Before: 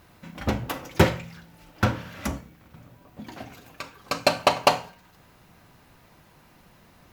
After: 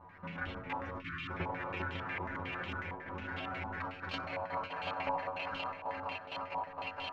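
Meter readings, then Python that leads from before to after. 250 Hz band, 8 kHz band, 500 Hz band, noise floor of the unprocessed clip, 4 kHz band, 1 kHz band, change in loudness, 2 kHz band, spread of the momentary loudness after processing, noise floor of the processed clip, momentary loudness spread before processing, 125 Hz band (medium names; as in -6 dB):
-13.5 dB, under -30 dB, -13.5 dB, -56 dBFS, -13.0 dB, -8.0 dB, -14.0 dB, -6.0 dB, 4 LU, -49 dBFS, 21 LU, -14.0 dB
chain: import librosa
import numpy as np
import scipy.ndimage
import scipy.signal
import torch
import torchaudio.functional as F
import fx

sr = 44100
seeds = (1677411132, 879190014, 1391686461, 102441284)

p1 = fx.reverse_delay_fb(x, sr, ms=231, feedback_pct=85, wet_db=-11)
p2 = fx.level_steps(p1, sr, step_db=15)
p3 = p2 + fx.echo_tape(p2, sr, ms=400, feedback_pct=72, wet_db=-18.5, lp_hz=1100.0, drive_db=5.0, wow_cents=6, dry=0)
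p4 = fx.over_compress(p3, sr, threshold_db=-35.0, ratio=-0.5)
p5 = fx.stiff_resonator(p4, sr, f0_hz=89.0, decay_s=0.32, stiffness=0.002)
p6 = fx.echo_feedback(p5, sr, ms=94, feedback_pct=51, wet_db=-11.0)
p7 = fx.spec_erase(p6, sr, start_s=1.02, length_s=0.28, low_hz=350.0, high_hz=1000.0)
p8 = fx.hum_notches(p7, sr, base_hz=60, count=6)
p9 = fx.filter_held_lowpass(p8, sr, hz=11.0, low_hz=940.0, high_hz=3100.0)
y = p9 * 10.0 ** (5.5 / 20.0)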